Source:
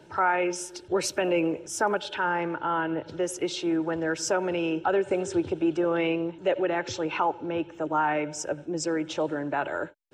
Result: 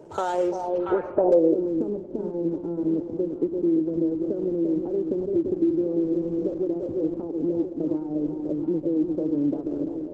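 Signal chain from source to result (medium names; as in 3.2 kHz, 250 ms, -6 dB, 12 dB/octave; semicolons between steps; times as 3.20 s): median filter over 25 samples; echo whose repeats swap between lows and highs 341 ms, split 820 Hz, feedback 69%, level -6 dB; compression 10:1, threshold -28 dBFS, peak gain reduction 9.5 dB; graphic EQ 125/500/2000/4000 Hz -3/+7/-6/-7 dB; 4.39–6.17 s: word length cut 12-bit, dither none; low-pass sweep 7.4 kHz -> 270 Hz, 0.45–1.66 s; trim +4.5 dB; Opus 16 kbps 48 kHz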